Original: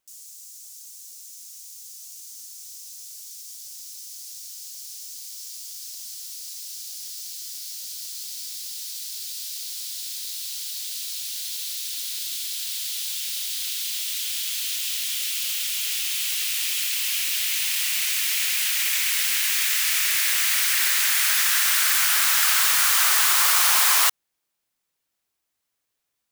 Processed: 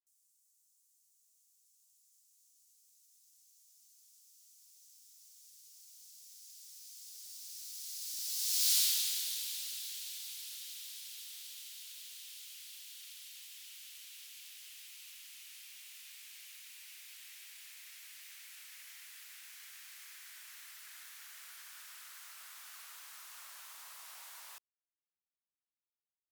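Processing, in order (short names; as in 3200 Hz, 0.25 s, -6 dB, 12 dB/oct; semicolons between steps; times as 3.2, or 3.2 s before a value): Doppler pass-by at 8.73, 36 m/s, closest 5.8 m; gain +5.5 dB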